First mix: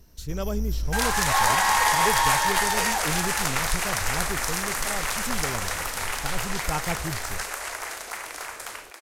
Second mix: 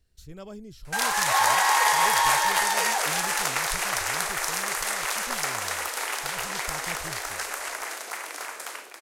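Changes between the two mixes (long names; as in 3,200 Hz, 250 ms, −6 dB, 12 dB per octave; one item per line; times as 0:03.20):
speech −10.5 dB
first sound: muted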